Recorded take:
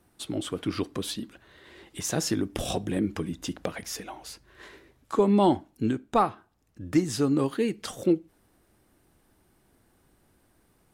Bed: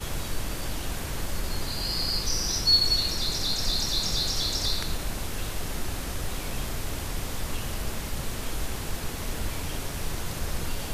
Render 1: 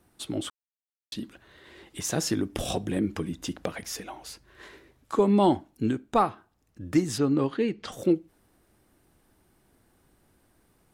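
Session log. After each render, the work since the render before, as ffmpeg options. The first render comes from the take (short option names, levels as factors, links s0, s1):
-filter_complex "[0:a]asettb=1/sr,asplit=3[s0][s1][s2];[s0]atrim=end=7.184[s3];[s1]atrim=start=7.18:end=7.92,asetpts=PTS-STARTPTS,afade=t=in:d=0.004:c=qsin,afade=t=out:st=0.736:d=0.004:c=qsin,lowpass=4200[s4];[s2]atrim=start=7.916[s5];[s3][s4]acrossfade=d=0.004:c1=hsin:c2=qsin[s6];[s6][s5]acrossfade=d=0.004:c1=qsin:c2=hsin,asplit=3[s7][s8][s9];[s7]atrim=end=0.5,asetpts=PTS-STARTPTS,afade=t=out:st=0.496:d=0.004:c=hsin[s10];[s8]atrim=start=0.5:end=1.12,asetpts=PTS-STARTPTS,volume=0[s11];[s9]atrim=start=1.12,asetpts=PTS-STARTPTS,afade=t=in:d=0.004:c=hsin[s12];[s10][s11][s12]concat=n=3:v=0:a=1"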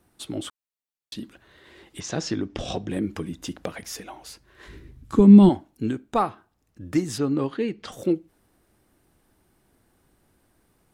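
-filter_complex "[0:a]asettb=1/sr,asplit=3[s0][s1][s2];[s0]atrim=end=2.004[s3];[s1]atrim=start=2:end=2.91,asetpts=PTS-STARTPTS,afade=t=in:d=0.004:c=qsin,afade=t=out:st=0.906:d=0.004:c=qsin,lowpass=f=6200:w=0.5412,lowpass=f=6200:w=1.3066[s4];[s2]atrim=start=2.906[s5];[s3][s4]acrossfade=d=0.004:c1=hsin:c2=qsin[s6];[s6][s5]acrossfade=d=0.004:c1=qsin:c2=hsin,asplit=3[s7][s8][s9];[s7]afade=t=out:st=4.66:d=0.02[s10];[s8]asubboost=boost=11.5:cutoff=190,afade=t=in:st=4.66:d=0.02,afade=t=out:st=5.48:d=0.02[s11];[s9]afade=t=in:st=5.48:d=0.02[s12];[s10][s11][s12]amix=inputs=3:normalize=0"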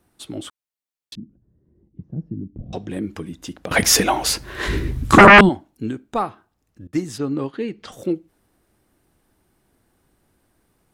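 -filter_complex "[0:a]asettb=1/sr,asplit=3[s0][s1][s2];[s0]atrim=end=1.154[s3];[s1]atrim=start=1.15:end=2.73,asetpts=PTS-STARTPTS,afade=t=in:d=0.004:c=qsin,afade=t=out:st=1.576:d=0.004:c=qsin,lowpass=f=180:t=q:w=1.5[s4];[s2]atrim=start=2.726[s5];[s3][s4]acrossfade=d=0.004:c1=hsin:c2=qsin[s6];[s6][s5]acrossfade=d=0.004:c1=qsin:c2=hsin,asettb=1/sr,asplit=3[s7][s8][s9];[s7]atrim=end=3.714[s10];[s8]atrim=start=3.71:end=5.41,asetpts=PTS-STARTPTS,afade=t=in:d=0.004:c=qsin,afade=t=out:st=1.696:d=0.004:c=qsin,aeval=exprs='0.708*sin(PI/2*7.94*val(0)/0.708)':c=same[s11];[s9]atrim=start=5.406[s12];[s10][s11]acrossfade=d=0.004:c1=hsin:c2=qsin[s13];[s13][s12]acrossfade=d=0.004:c1=qsin:c2=hsin,asettb=1/sr,asplit=3[s14][s15][s16];[s14]atrim=end=6.874[s17];[s15]atrim=start=6.87:end=7.54,asetpts=PTS-STARTPTS,afade=t=in:d=0.004:c=qsin,afade=t=out:st=0.666:d=0.004:c=qsin,agate=range=0.0224:threshold=0.0282:ratio=3:release=100:detection=peak[s18];[s16]atrim=start=7.536[s19];[s17][s18]acrossfade=d=0.004:c1=hsin:c2=qsin[s20];[s20][s19]acrossfade=d=0.004:c1=qsin:c2=hsin"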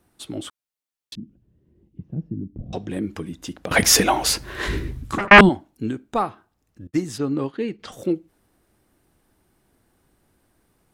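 -filter_complex "[0:a]asettb=1/sr,asplit=3[s0][s1][s2];[s0]atrim=end=1.194[s3];[s1]atrim=start=1.19:end=2.27,asetpts=PTS-STARTPTS,afade=t=in:d=0.004:c=qsin,afade=t=out:st=1.076:d=0.004:c=qsin,equalizer=f=2800:w=1.5:g=11[s4];[s2]atrim=start=2.266[s5];[s3][s4]acrossfade=d=0.004:c1=hsin:c2=qsin[s6];[s6][s5]acrossfade=d=0.004:c1=qsin:c2=hsin,asplit=3[s7][s8][s9];[s7]afade=t=out:st=6.88:d=0.02[s10];[s8]agate=range=0.0224:threshold=0.0112:ratio=3:release=100:detection=peak,afade=t=in:st=6.88:d=0.02,afade=t=out:st=7.78:d=0.02[s11];[s9]afade=t=in:st=7.78:d=0.02[s12];[s10][s11][s12]amix=inputs=3:normalize=0,asplit=2[s13][s14];[s13]atrim=end=5.31,asetpts=PTS-STARTPTS,afade=t=out:st=4.51:d=0.8[s15];[s14]atrim=start=5.31,asetpts=PTS-STARTPTS,afade=t=in:d=0.004:c=hsin[s16];[s15][s16]concat=n=2:v=0:a=1"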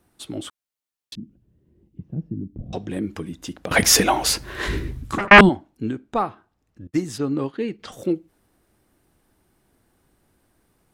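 -filter_complex "[0:a]asettb=1/sr,asplit=3[s0][s1][s2];[s0]atrim=end=5.504[s3];[s1]atrim=start=5.5:end=6.92,asetpts=PTS-STARTPTS,afade=t=in:d=0.004:c=qsin,afade=t=out:st=1.416:d=0.004:c=qsin,highshelf=f=6500:g=-9.5[s4];[s2]atrim=start=6.916[s5];[s3][s4]acrossfade=d=0.004:c1=hsin:c2=qsin[s6];[s6][s5]acrossfade=d=0.004:c1=qsin:c2=hsin"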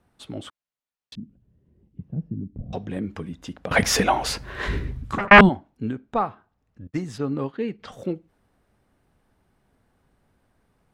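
-af "lowpass=f=2500:p=1,equalizer=f=330:t=o:w=0.35:g=-8.5"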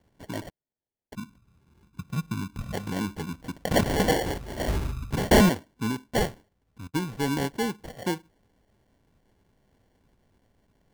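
-af "aresample=11025,asoftclip=type=tanh:threshold=0.211,aresample=44100,acrusher=samples=35:mix=1:aa=0.000001"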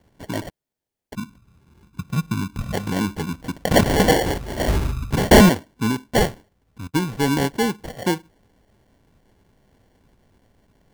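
-af "volume=2.24"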